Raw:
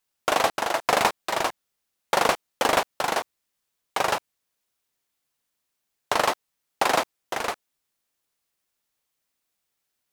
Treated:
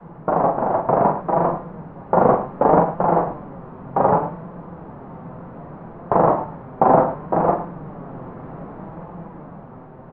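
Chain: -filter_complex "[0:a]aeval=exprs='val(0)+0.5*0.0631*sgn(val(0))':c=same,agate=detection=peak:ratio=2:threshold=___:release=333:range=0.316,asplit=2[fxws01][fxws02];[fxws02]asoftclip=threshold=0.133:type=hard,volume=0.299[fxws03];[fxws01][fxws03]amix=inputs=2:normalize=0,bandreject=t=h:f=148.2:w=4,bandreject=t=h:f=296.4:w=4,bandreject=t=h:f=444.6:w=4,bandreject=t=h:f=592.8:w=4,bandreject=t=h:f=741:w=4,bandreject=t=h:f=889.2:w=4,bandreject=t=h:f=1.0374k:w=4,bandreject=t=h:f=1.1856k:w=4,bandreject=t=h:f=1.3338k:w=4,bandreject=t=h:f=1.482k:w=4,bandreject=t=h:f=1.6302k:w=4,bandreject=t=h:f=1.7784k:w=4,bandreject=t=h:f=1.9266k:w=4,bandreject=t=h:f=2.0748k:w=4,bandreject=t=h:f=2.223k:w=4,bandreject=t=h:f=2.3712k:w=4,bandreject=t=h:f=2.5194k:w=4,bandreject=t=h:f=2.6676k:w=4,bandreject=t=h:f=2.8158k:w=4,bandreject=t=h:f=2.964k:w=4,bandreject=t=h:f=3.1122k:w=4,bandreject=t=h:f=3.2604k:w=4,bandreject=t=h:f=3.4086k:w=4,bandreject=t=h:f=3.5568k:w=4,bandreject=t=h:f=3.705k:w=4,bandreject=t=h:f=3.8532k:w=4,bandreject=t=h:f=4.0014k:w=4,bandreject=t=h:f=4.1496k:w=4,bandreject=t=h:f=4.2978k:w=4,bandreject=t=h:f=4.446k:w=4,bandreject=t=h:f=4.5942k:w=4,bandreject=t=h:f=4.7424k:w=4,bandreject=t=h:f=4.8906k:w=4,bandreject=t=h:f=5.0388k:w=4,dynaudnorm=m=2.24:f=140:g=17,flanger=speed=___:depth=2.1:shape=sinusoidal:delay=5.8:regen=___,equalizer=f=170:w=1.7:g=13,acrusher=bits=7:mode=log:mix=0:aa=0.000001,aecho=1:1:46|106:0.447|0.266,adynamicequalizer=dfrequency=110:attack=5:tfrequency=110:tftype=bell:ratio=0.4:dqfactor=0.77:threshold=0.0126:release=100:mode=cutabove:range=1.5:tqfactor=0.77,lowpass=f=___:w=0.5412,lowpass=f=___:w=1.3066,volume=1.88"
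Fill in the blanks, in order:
0.0501, 0.66, 59, 1k, 1k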